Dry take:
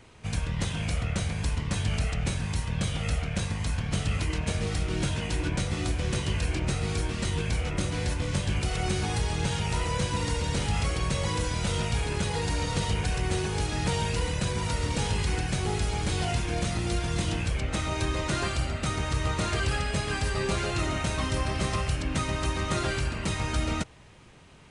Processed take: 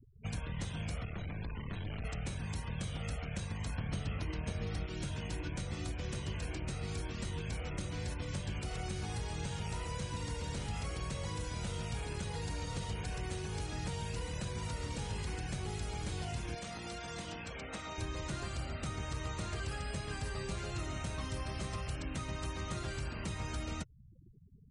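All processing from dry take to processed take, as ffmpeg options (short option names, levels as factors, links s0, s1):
-filter_complex "[0:a]asettb=1/sr,asplit=3[s0][s1][s2];[s0]atrim=end=1.054[s3];[s1]atrim=start=1.05:end=2.05,asetpts=PTS-STARTPTS,afade=t=in:d=0.004:c=qsin,afade=t=out:st=0.996:d=0.004:c=qsin,acrossover=split=3600[s4][s5];[s5]acompressor=threshold=0.00251:ratio=4:attack=1:release=60[s6];[s4][s6]amix=inputs=2:normalize=0,aeval=exprs='(tanh(25.1*val(0)+0.55)-tanh(0.55))/25.1':c=same[s7];[s2]atrim=start=2.046[s8];[s3][s7]acrossfade=d=0.004:c1=hsin:c2=qsin[s9];[s9][s8]acrossfade=d=0.004:c1=qsin:c2=hsin,asettb=1/sr,asplit=3[s10][s11][s12];[s10]atrim=end=3.784[s13];[s11]atrim=start=3.78:end=4.86,asetpts=PTS-STARTPTS,afade=t=in:d=0.004:c=qsin,afade=t=out:st=1.076:d=0.004:c=qsin,highshelf=f=2400:g=-11.5,bandreject=f=7400:w=11,acontrast=63[s14];[s12]atrim=start=4.856[s15];[s13][s14]acrossfade=d=0.004:c1=hsin:c2=qsin[s16];[s16][s15]acrossfade=d=0.004:c1=qsin:c2=hsin,asettb=1/sr,asplit=3[s17][s18][s19];[s17]atrim=end=16.554[s20];[s18]atrim=start=16.55:end=17.98,asetpts=PTS-STARTPTS,afade=t=in:d=0.004:c=qsin,afade=t=out:st=1.426:d=0.004:c=qsin,highpass=f=520:p=1,highshelf=f=7400:g=-6,aecho=1:1:4.3:0.33,atrim=end_sample=63063[s21];[s19]atrim=start=17.976[s22];[s20][s21]acrossfade=d=0.004:c1=hsin:c2=qsin[s23];[s23][s22]acrossfade=d=0.004:c1=qsin:c2=hsin,afftfilt=real='re*gte(hypot(re,im),0.00891)':imag='im*gte(hypot(re,im),0.00891)':win_size=1024:overlap=0.75,acrossover=split=160|1800|5200[s24][s25][s26][s27];[s24]acompressor=threshold=0.0158:ratio=4[s28];[s25]acompressor=threshold=0.00891:ratio=4[s29];[s26]acompressor=threshold=0.00316:ratio=4[s30];[s27]acompressor=threshold=0.00355:ratio=4[s31];[s28][s29][s30][s31]amix=inputs=4:normalize=0,volume=0.708"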